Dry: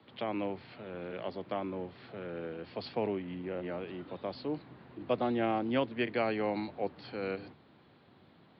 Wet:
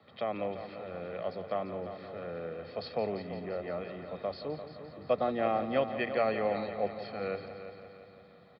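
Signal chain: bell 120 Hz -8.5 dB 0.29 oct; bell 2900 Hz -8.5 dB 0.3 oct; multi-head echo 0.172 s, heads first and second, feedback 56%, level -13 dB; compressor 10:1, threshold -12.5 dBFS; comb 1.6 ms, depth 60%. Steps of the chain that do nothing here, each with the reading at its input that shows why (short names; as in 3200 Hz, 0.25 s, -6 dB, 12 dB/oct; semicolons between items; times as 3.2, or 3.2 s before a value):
compressor, threshold -12.5 dBFS: input peak -17.5 dBFS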